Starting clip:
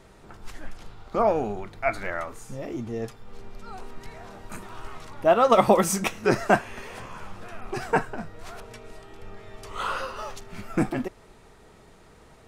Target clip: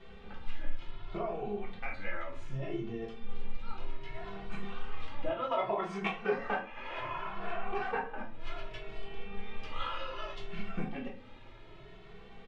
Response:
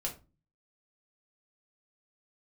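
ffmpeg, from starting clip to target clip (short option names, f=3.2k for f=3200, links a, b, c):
-filter_complex "[0:a]asettb=1/sr,asplit=3[a][b][c];[a]atrim=end=5.514[d];[b]atrim=start=5.51:end=8.23,asetpts=PTS-STARTPTS,afade=t=in:d=0.004:c=qsin,afade=t=out:st=2.716:d=0.004:c=qsin,equalizer=f=940:t=o:w=2.7:g=14[e];[c]atrim=start=8.226[f];[d][e]acrossfade=d=0.004:c1=hsin:c2=qsin[g];[g][f]acrossfade=d=0.004:c1=qsin:c2=hsin,acompressor=threshold=-36dB:ratio=3,lowpass=f=3.1k:t=q:w=2.5,aeval=exprs='0.211*(cos(1*acos(clip(val(0)/0.211,-1,1)))-cos(1*PI/2))+0.0133*(cos(3*acos(clip(val(0)/0.211,-1,1)))-cos(3*PI/2))':c=same[h];[1:a]atrim=start_sample=2205,asetrate=33075,aresample=44100[i];[h][i]afir=irnorm=-1:irlink=0,asplit=2[j][k];[k]adelay=2.2,afreqshift=0.65[l];[j][l]amix=inputs=2:normalize=1,volume=-1.5dB"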